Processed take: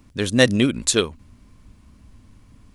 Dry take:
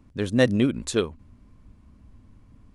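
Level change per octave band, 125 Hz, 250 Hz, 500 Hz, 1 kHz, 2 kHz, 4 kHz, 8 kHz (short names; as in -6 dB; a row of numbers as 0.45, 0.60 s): +2.5, +2.5, +3.0, +4.5, +7.5, +10.5, +12.5 dB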